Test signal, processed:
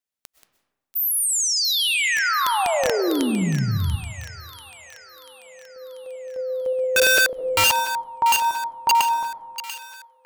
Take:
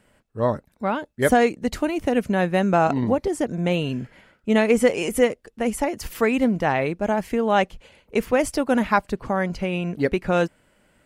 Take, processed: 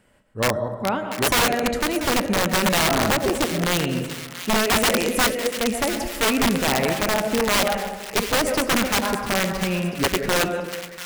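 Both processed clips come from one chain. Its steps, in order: chunks repeated in reverse 114 ms, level -9.5 dB; algorithmic reverb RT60 1.2 s, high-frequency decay 0.5×, pre-delay 85 ms, DRR 7.5 dB; integer overflow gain 13 dB; on a send: feedback echo behind a high-pass 689 ms, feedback 59%, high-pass 1.5 kHz, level -10.5 dB

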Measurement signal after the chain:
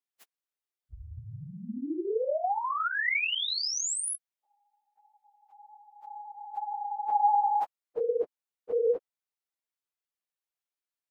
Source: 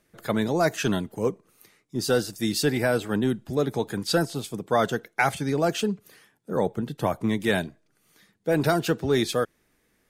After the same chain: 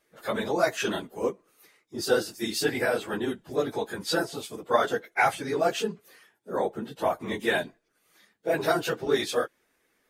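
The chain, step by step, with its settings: phase randomisation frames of 50 ms; tone controls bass -14 dB, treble -3 dB

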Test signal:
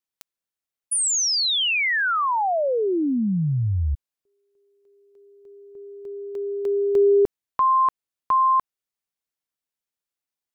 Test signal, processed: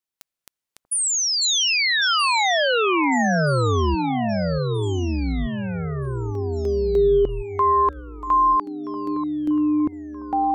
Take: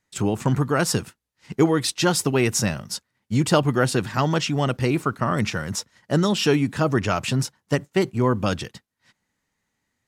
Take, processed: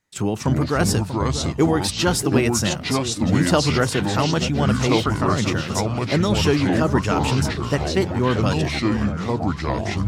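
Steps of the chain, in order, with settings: echo whose repeats swap between lows and highs 638 ms, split 1.1 kHz, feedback 59%, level -10 dB; ever faster or slower copies 194 ms, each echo -5 st, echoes 2

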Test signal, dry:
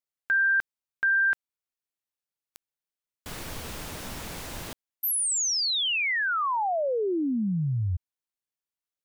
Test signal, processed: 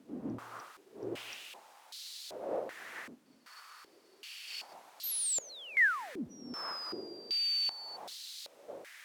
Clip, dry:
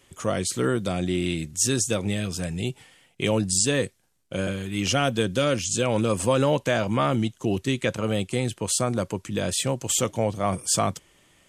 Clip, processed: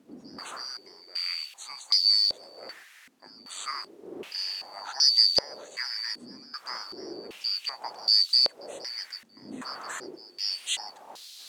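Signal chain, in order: four frequency bands reordered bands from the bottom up 2341; wind noise 420 Hz -32 dBFS; gate -34 dBFS, range -9 dB; tilt EQ +3.5 dB/octave; added noise blue -31 dBFS; step-sequenced band-pass 2.6 Hz 250–4100 Hz

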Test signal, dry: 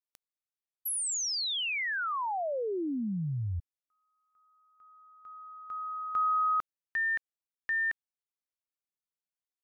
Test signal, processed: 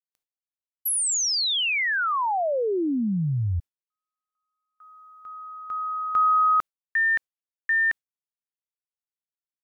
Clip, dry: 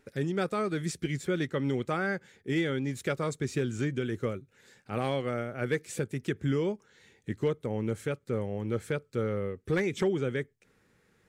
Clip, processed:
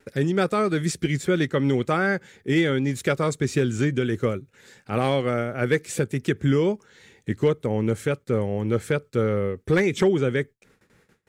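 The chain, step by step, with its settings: gate with hold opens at -57 dBFS, closes at -61 dBFS, hold 20 ms, range -24 dB; trim +8 dB

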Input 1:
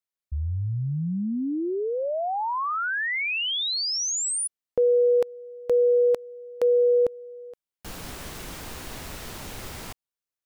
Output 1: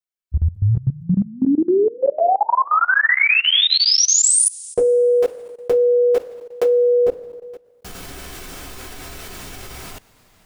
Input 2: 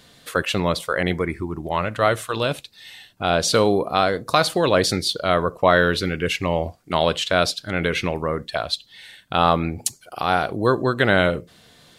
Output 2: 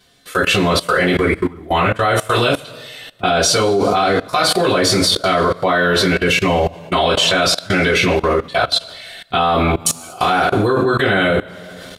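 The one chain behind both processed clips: two-slope reverb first 0.2 s, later 1.6 s, from -21 dB, DRR -8.5 dB; level held to a coarse grid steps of 20 dB; trim +5.5 dB

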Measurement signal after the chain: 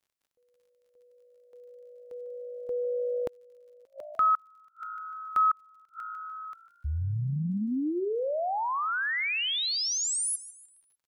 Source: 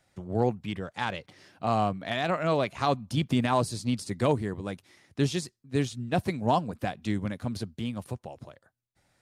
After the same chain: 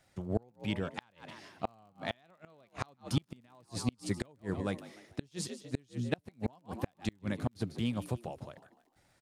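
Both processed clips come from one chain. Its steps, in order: frequency-shifting echo 149 ms, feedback 41%, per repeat +55 Hz, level -16 dB; inverted gate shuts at -18 dBFS, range -35 dB; crackle 46 per s -59 dBFS

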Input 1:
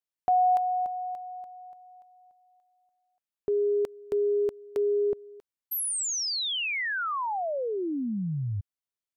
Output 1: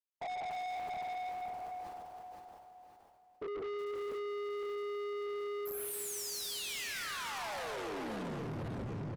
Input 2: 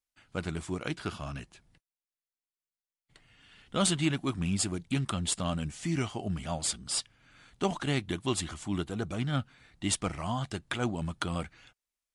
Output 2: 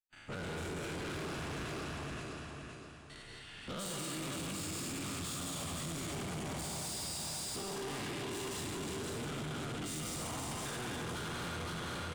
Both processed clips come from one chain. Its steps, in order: every event in the spectrogram widened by 120 ms; in parallel at +3 dB: compression, threshold -35 dBFS; on the sum: gate with hold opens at -42 dBFS, closes at -51 dBFS, hold 71 ms, range -16 dB; feedback delay 517 ms, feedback 37%, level -5 dB; plate-style reverb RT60 1.6 s, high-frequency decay 1×, pre-delay 120 ms, DRR -2.5 dB; peak limiter -15.5 dBFS; saturation -30 dBFS; decay stretcher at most 28 dB/s; trim -8 dB

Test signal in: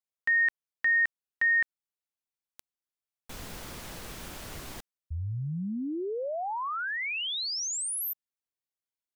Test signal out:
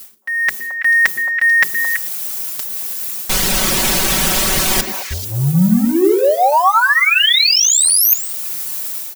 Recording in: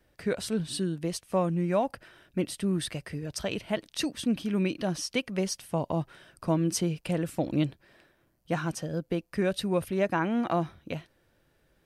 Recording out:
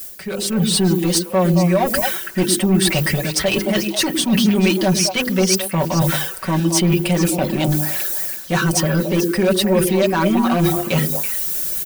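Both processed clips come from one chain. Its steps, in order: added noise violet -56 dBFS; reverb removal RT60 0.57 s; treble shelf 2.5 kHz +8 dB; hum notches 50/100/150/200/250/300/350/400/450/500 Hz; reverse; compression 20:1, threshold -39 dBFS; reverse; waveshaping leveller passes 3; level rider gain up to 10 dB; comb 5.3 ms, depth 87%; on a send: repeats whose band climbs or falls 110 ms, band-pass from 280 Hz, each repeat 1.4 oct, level -1 dB; on the sum: trim +4 dB

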